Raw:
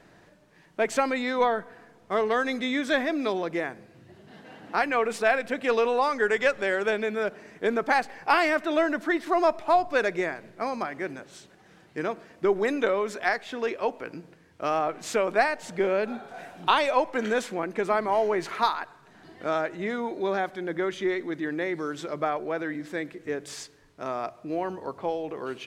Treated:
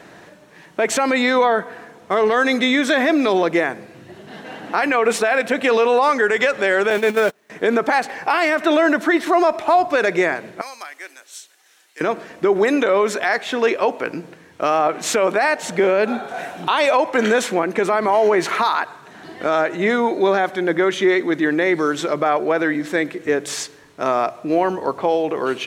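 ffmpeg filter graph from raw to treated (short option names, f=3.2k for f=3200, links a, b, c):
-filter_complex "[0:a]asettb=1/sr,asplit=3[a][b][c];[a]atrim=end=6.904[d];[b]atrim=start=6.9:end=7.5,asetpts=PTS-STARTPTS,afade=t=in:d=0.004:c=qsin,afade=t=out:st=0.596:d=0.004:c=qsin,aeval=exprs='val(0)+0.5*0.02*sgn(val(0))':c=same,agate=range=-36dB:threshold=-29dB:ratio=16:release=100:detection=peak[e];[c]atrim=start=7.496[f];[d][e]acrossfade=d=0.004:c1=hsin:c2=qsin[g];[g][f]acrossfade=d=0.004:c1=qsin:c2=hsin,asettb=1/sr,asplit=3[h][i][j];[h]atrim=end=10.614[k];[i]atrim=start=10.61:end=12.01,asetpts=PTS-STARTPTS,afade=t=in:d=0.004:c=qsin,afade=t=out:st=1.396:d=0.004:c=qsin,highpass=f=240:w=0.5412,highpass=f=240:w=1.3066,aderivative[l];[j]atrim=start=12.006[m];[k][l]acrossfade=d=0.004:c1=hsin:c2=qsin[n];[n][m]acrossfade=d=0.004:c1=qsin:c2=hsin,highpass=f=210:p=1,bandreject=f=4.8k:w=15,alimiter=level_in=20dB:limit=-1dB:release=50:level=0:latency=1,volume=-6.5dB"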